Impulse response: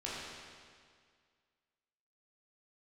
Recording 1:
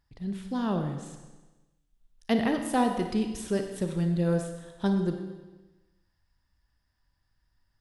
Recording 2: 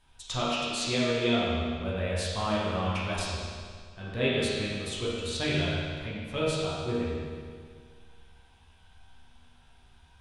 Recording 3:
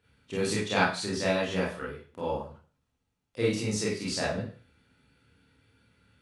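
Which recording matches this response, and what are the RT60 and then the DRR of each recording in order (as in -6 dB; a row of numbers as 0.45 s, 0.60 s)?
2; 1.2 s, 2.0 s, 0.40 s; 5.0 dB, -7.5 dB, -7.0 dB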